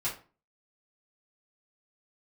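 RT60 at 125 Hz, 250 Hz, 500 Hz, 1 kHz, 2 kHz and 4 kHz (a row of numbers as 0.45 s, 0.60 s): 0.45 s, 0.45 s, 0.35 s, 0.35 s, 0.30 s, 0.25 s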